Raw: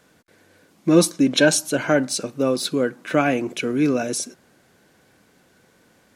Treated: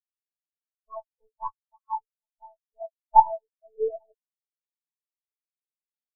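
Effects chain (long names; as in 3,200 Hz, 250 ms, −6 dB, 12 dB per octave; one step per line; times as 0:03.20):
pitch glide at a constant tempo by +11.5 semitones ending unshifted
low-shelf EQ 320 Hz −6.5 dB
comb filter 7.2 ms, depth 37%
leveller curve on the samples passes 1
band-pass filter sweep 1,300 Hz → 610 Hz, 0:02.29–0:03.93
phaser swept by the level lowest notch 600 Hz, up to 2,900 Hz, full sweep at −28 dBFS
one-pitch LPC vocoder at 8 kHz 220 Hz
every bin expanded away from the loudest bin 4 to 1
level +5 dB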